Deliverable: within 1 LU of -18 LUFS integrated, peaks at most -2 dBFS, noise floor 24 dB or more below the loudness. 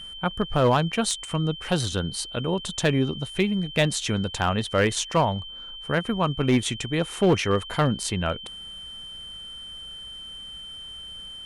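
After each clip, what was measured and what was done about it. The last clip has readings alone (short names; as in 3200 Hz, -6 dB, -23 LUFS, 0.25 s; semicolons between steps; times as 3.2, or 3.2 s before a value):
clipped 0.4%; flat tops at -13.0 dBFS; steady tone 3100 Hz; tone level -37 dBFS; loudness -24.5 LUFS; peak -13.0 dBFS; loudness target -18.0 LUFS
-> clip repair -13 dBFS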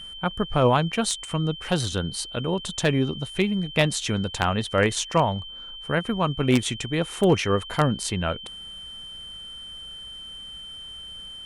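clipped 0.0%; steady tone 3100 Hz; tone level -37 dBFS
-> notch 3100 Hz, Q 30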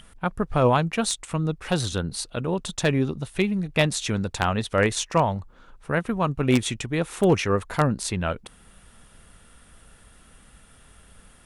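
steady tone none; loudness -24.5 LUFS; peak -4.0 dBFS; loudness target -18.0 LUFS
-> gain +6.5 dB; limiter -2 dBFS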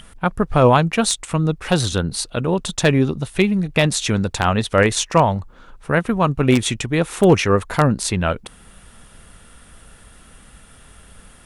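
loudness -18.5 LUFS; peak -2.0 dBFS; noise floor -47 dBFS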